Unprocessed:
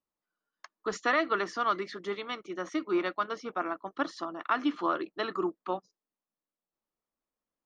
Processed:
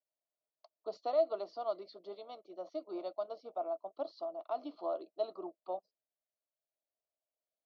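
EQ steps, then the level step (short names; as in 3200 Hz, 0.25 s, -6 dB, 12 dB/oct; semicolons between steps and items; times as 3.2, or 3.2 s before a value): double band-pass 1700 Hz, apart 2.8 oct; air absorption 160 m; high shelf 3000 Hz -9.5 dB; +6.0 dB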